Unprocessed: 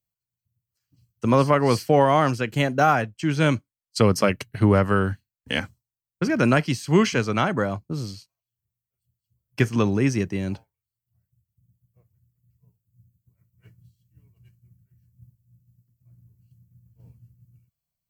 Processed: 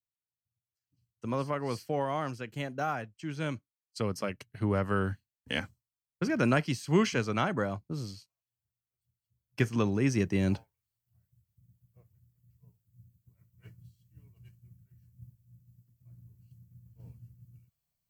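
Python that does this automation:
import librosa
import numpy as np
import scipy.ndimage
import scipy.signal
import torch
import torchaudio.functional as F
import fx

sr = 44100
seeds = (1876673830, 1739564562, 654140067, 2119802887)

y = fx.gain(x, sr, db=fx.line((4.47, -14.0), (5.08, -7.0), (10.0, -7.0), (10.45, 0.5)))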